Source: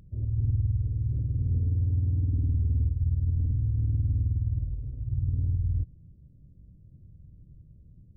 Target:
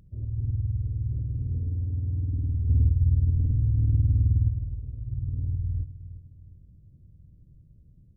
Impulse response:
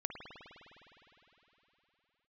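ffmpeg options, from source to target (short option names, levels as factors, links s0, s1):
-filter_complex "[0:a]aecho=1:1:361|722|1083|1444:0.188|0.0772|0.0317|0.013,asplit=3[s0][s1][s2];[s0]afade=t=out:st=2.67:d=0.02[s3];[s1]acontrast=56,afade=t=in:st=2.67:d=0.02,afade=t=out:st=4.49:d=0.02[s4];[s2]afade=t=in:st=4.49:d=0.02[s5];[s3][s4][s5]amix=inputs=3:normalize=0,asplit=2[s6][s7];[1:a]atrim=start_sample=2205,adelay=71[s8];[s7][s8]afir=irnorm=-1:irlink=0,volume=0.0841[s9];[s6][s9]amix=inputs=2:normalize=0,volume=0.75"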